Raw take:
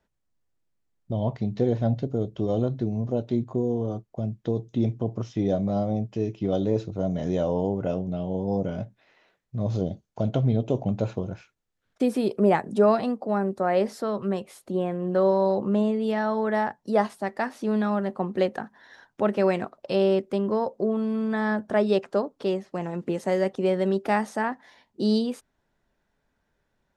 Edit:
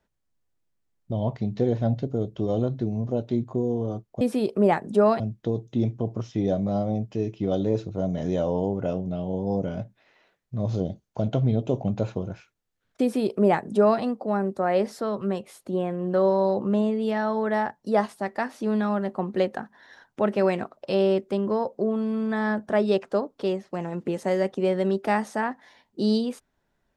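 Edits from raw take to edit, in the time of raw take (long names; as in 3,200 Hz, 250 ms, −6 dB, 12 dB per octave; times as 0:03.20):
0:12.03–0:13.02: duplicate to 0:04.21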